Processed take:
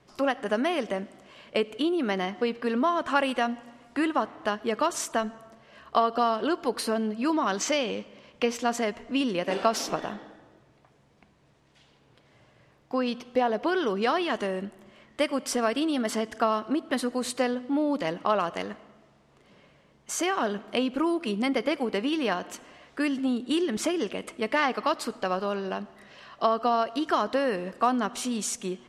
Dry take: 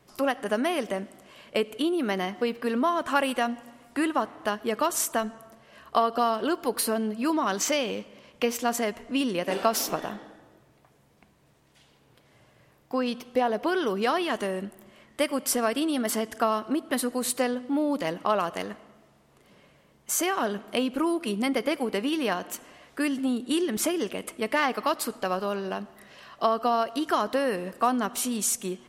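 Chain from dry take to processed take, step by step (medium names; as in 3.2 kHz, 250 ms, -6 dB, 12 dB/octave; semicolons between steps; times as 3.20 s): low-pass 6.5 kHz 12 dB/octave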